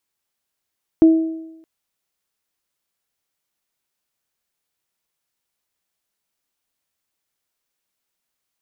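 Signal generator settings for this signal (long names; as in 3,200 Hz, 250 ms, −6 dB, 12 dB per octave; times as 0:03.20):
harmonic partials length 0.62 s, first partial 323 Hz, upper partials −18.5 dB, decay 0.90 s, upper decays 0.89 s, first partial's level −5 dB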